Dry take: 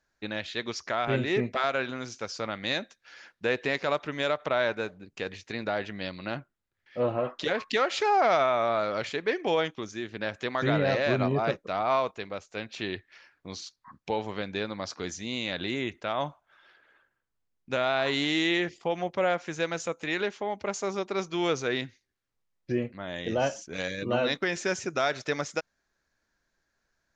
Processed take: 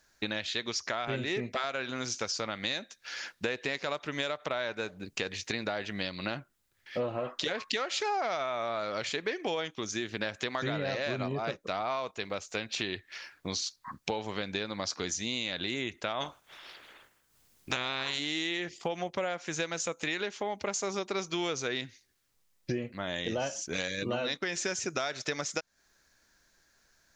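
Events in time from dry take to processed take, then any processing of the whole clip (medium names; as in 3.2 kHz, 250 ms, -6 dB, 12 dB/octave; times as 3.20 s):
16.20–18.18 s: spectral peaks clipped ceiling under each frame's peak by 17 dB
whole clip: treble shelf 3.4 kHz +10.5 dB; compression 6:1, threshold -37 dBFS; trim +6.5 dB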